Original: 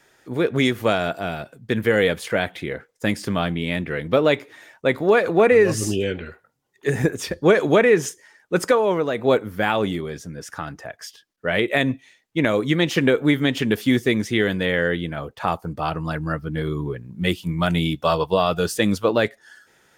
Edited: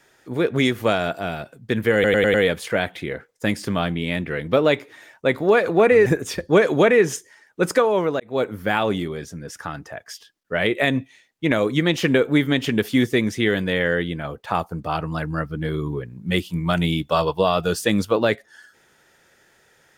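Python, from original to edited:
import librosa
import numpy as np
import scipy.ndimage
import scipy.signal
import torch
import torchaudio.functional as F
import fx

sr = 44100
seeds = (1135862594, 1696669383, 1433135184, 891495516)

y = fx.edit(x, sr, fx.stutter(start_s=1.94, slice_s=0.1, count=5),
    fx.cut(start_s=5.66, length_s=1.33),
    fx.fade_in_span(start_s=9.13, length_s=0.33), tone=tone)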